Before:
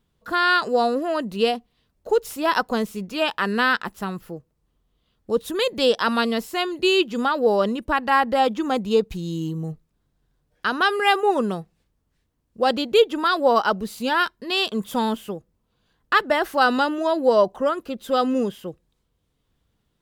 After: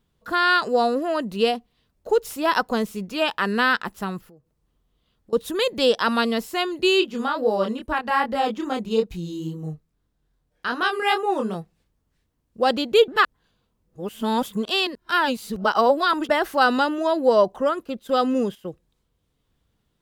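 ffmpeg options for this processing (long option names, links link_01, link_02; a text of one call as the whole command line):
ffmpeg -i in.wav -filter_complex "[0:a]asettb=1/sr,asplit=3[link_01][link_02][link_03];[link_01]atrim=end=4.204[link_04];[link_02]atrim=start=4.2:end=5.33,asetpts=PTS-STARTPTS,afade=type=in:duration=0.004:curve=qsin,afade=type=out:start_time=1.126:duration=0.004:curve=qsin,acompressor=threshold=-50dB:ratio=4:attack=3.2:release=140:knee=1:detection=peak[link_05];[link_03]atrim=start=5.326[link_06];[link_04][link_05]acrossfade=duration=0.004:curve1=hsin:curve2=qsin[link_07];[link_07][link_06]acrossfade=duration=0.004:curve1=qsin:curve2=hsin,asplit=3[link_08][link_09][link_10];[link_08]afade=type=out:start_time=7:duration=0.02[link_11];[link_09]flanger=delay=22.5:depth=5:speed=2.4,afade=type=in:start_time=7:duration=0.02,afade=type=out:start_time=11.54:duration=0.02[link_12];[link_10]afade=type=in:start_time=11.54:duration=0.02[link_13];[link_11][link_12][link_13]amix=inputs=3:normalize=0,asplit=3[link_14][link_15][link_16];[link_14]afade=type=out:start_time=17.84:duration=0.02[link_17];[link_15]agate=range=-10dB:threshold=-40dB:ratio=16:release=100:detection=peak,afade=type=in:start_time=17.84:duration=0.02,afade=type=out:start_time=18.68:duration=0.02[link_18];[link_16]afade=type=in:start_time=18.68:duration=0.02[link_19];[link_17][link_18][link_19]amix=inputs=3:normalize=0,asplit=3[link_20][link_21][link_22];[link_20]atrim=end=13.082[link_23];[link_21]atrim=start=13.078:end=16.292,asetpts=PTS-STARTPTS,areverse[link_24];[link_22]atrim=start=16.288[link_25];[link_23][link_24]acrossfade=duration=0.004:curve1=hsin:curve2=hsin[link_26];[link_26][link_25]acrossfade=duration=0.004:curve1=hsin:curve2=hsin" out.wav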